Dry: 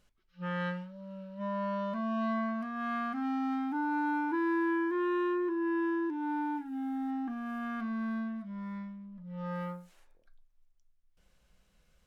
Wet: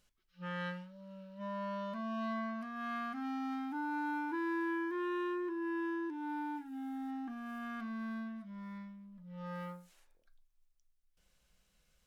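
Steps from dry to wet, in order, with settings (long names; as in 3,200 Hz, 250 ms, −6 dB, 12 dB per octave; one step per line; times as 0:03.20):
high-shelf EQ 2,400 Hz +8 dB
level −6.5 dB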